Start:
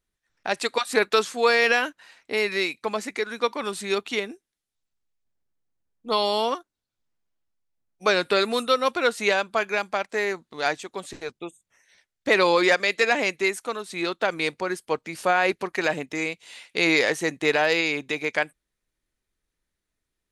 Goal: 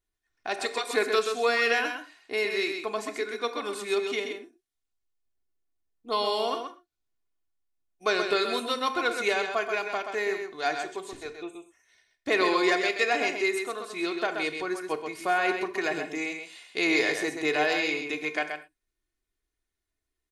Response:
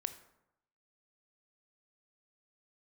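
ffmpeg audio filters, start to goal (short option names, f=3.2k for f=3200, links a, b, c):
-filter_complex "[0:a]aecho=1:1:2.8:0.54,aecho=1:1:129:0.473[a];[1:a]atrim=start_sample=2205,afade=t=out:st=0.17:d=0.01,atrim=end_sample=7938[b];[a][b]afir=irnorm=-1:irlink=0,volume=-5dB"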